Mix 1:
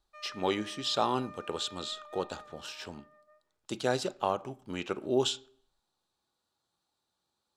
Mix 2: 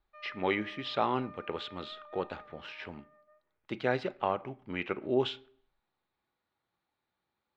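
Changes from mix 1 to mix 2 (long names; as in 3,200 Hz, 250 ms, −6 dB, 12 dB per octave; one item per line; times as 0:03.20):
speech: add parametric band 2,100 Hz +12.5 dB 0.57 octaves
master: add high-frequency loss of the air 340 metres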